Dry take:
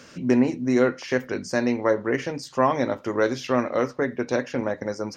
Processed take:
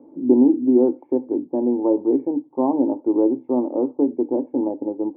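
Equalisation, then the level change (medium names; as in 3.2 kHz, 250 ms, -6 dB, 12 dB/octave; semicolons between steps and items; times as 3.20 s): cascade formant filter u; high-order bell 540 Hz +15 dB 2.4 oct; 0.0 dB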